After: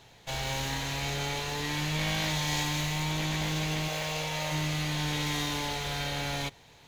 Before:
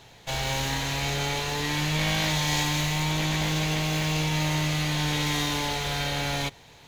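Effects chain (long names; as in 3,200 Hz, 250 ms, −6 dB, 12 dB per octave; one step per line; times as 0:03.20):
0:03.88–0:04.52: low shelf with overshoot 420 Hz −6 dB, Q 3
level −4.5 dB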